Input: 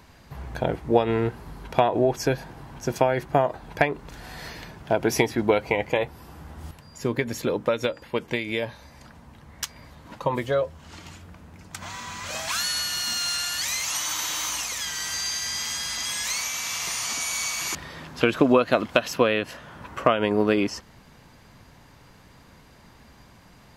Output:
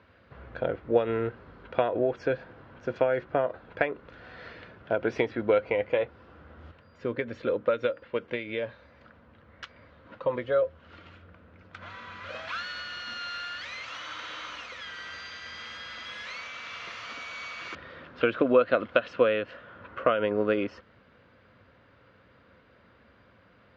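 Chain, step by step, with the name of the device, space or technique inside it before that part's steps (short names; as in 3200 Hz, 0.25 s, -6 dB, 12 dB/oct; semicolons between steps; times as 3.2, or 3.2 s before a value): guitar cabinet (speaker cabinet 79–3500 Hz, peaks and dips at 93 Hz +3 dB, 150 Hz -8 dB, 520 Hz +9 dB, 850 Hz -7 dB, 1400 Hz +8 dB); gain -7 dB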